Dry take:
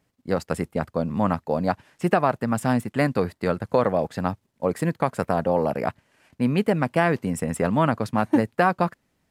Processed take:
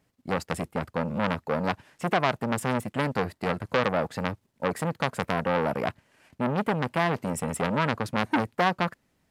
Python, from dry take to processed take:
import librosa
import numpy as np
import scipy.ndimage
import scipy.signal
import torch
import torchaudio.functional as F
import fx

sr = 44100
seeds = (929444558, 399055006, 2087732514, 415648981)

y = fx.transformer_sat(x, sr, knee_hz=1800.0)